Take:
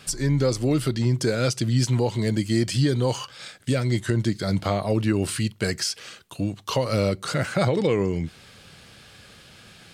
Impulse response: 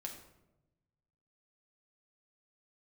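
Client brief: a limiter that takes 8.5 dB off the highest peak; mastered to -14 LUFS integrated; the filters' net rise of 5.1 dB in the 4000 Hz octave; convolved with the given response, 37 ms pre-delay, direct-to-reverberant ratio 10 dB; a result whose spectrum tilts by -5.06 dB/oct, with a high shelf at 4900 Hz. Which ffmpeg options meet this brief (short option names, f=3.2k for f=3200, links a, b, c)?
-filter_complex "[0:a]equalizer=f=4k:t=o:g=8.5,highshelf=f=4.9k:g=-4,alimiter=limit=-16dB:level=0:latency=1,asplit=2[a][b];[1:a]atrim=start_sample=2205,adelay=37[c];[b][c]afir=irnorm=-1:irlink=0,volume=-7.5dB[d];[a][d]amix=inputs=2:normalize=0,volume=12.5dB"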